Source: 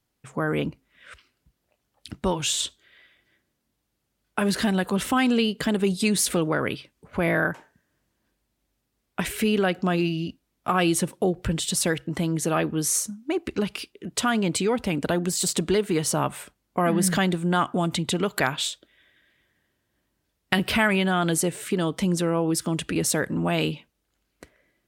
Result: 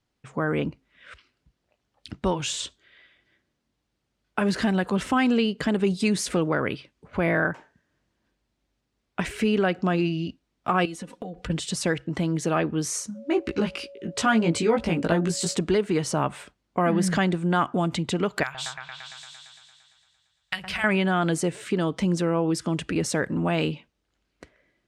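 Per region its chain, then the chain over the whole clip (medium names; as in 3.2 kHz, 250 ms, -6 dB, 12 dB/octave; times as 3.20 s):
10.85–11.50 s: comb 4.1 ms, depth 82% + compression 10:1, threshold -31 dBFS
13.14–15.56 s: whistle 560 Hz -47 dBFS + doubling 18 ms -2.5 dB
18.43–20.84 s: de-esser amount 30% + amplifier tone stack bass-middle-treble 10-0-10 + delay with an opening low-pass 114 ms, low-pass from 750 Hz, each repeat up 1 oct, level 0 dB
whole clip: low-pass 6.1 kHz 12 dB/octave; dynamic bell 3.6 kHz, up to -5 dB, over -43 dBFS, Q 2.1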